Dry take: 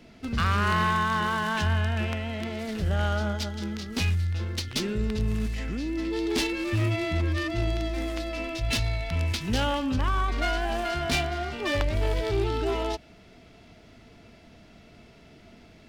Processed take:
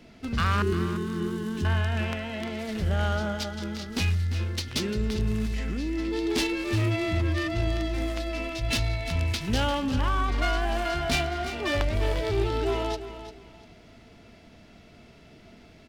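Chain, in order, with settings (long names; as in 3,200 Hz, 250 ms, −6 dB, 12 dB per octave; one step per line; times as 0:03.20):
0:00.62–0:01.65: drawn EQ curve 180 Hz 0 dB, 260 Hz +6 dB, 390 Hz +11 dB, 570 Hz −23 dB, 9,800 Hz −4 dB
on a send: repeating echo 347 ms, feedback 24%, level −12 dB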